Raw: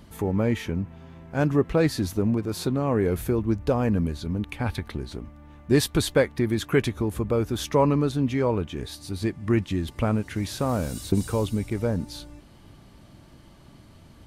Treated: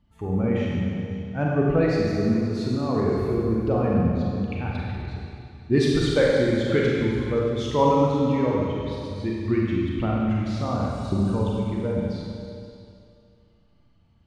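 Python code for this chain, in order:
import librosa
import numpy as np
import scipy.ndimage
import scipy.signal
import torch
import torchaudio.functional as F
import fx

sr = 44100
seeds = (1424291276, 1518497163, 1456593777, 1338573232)

p1 = fx.bin_expand(x, sr, power=1.5)
p2 = fx.air_absorb(p1, sr, metres=120.0)
p3 = p2 + fx.echo_single(p2, sr, ms=527, db=-16.0, dry=0)
y = fx.rev_schroeder(p3, sr, rt60_s=2.3, comb_ms=32, drr_db=-4.0)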